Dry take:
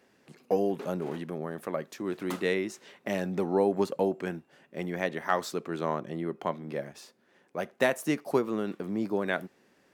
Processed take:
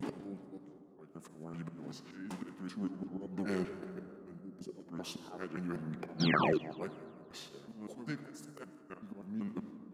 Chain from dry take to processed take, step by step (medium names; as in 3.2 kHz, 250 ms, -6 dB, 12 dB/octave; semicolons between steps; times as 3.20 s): slices played last to first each 192 ms, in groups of 5; time-frequency box 4.40–4.74 s, 550–5300 Hz -11 dB; slow attack 671 ms; gate with hold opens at -47 dBFS; on a send at -8 dB: reverberation RT60 3.2 s, pre-delay 48 ms; on the sum: painted sound fall, 6.20–6.58 s, 410–6100 Hz -29 dBFS; feedback echo behind a high-pass 172 ms, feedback 42%, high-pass 2.3 kHz, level -17 dB; formant shift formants -5 st; trim +1 dB